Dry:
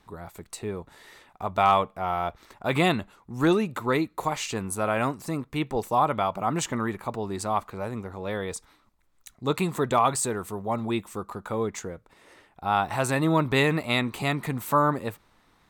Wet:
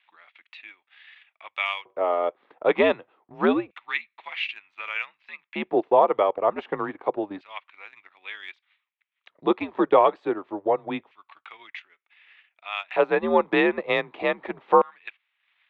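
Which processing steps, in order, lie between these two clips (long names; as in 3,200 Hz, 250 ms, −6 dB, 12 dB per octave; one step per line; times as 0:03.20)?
auto-filter high-pass square 0.27 Hz 520–2,500 Hz
single-sideband voice off tune −92 Hz 220–3,400 Hz
transient designer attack +3 dB, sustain −9 dB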